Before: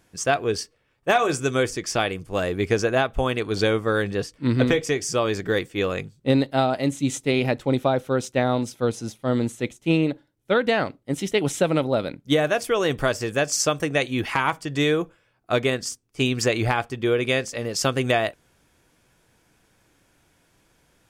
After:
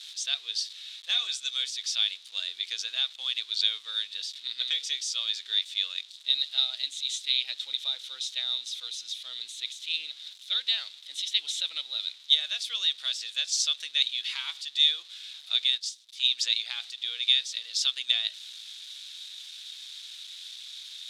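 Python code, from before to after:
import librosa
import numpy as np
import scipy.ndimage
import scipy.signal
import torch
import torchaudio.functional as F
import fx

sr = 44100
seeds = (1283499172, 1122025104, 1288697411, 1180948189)

y = x + 0.5 * 10.0 ** (-34.0 / 20.0) * np.sign(x)
y = fx.ladder_bandpass(y, sr, hz=3900.0, resonance_pct=80)
y = fx.transient(y, sr, attack_db=-7, sustain_db=-11, at=(15.77, 16.23), fade=0.02)
y = y * 10.0 ** (8.0 / 20.0)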